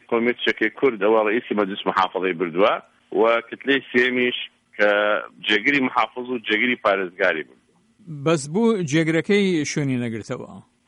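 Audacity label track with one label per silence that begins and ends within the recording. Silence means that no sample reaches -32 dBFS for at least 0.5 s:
7.420000	8.090000	silence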